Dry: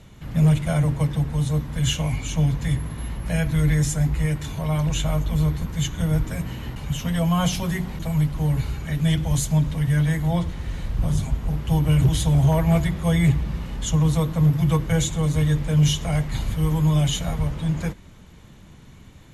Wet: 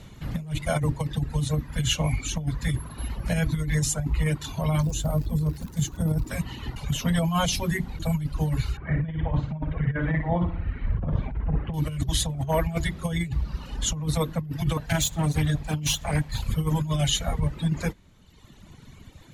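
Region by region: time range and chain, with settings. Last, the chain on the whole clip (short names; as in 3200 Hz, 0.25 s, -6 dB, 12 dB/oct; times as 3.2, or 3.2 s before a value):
4.82–6.29 HPF 65 Hz 6 dB/oct + bell 2400 Hz -13.5 dB 1.8 oct + crackle 200/s -34 dBFS
8.77–11.74 LPF 2200 Hz 24 dB/oct + flutter echo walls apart 9.8 m, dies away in 0.85 s
14.77–16.49 minimum comb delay 1.2 ms + HPF 55 Hz 6 dB/oct + bell 350 Hz -14.5 dB 0.26 oct
whole clip: reverb removal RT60 1.5 s; bell 4200 Hz +3 dB 0.39 oct; negative-ratio compressor -23 dBFS, ratio -0.5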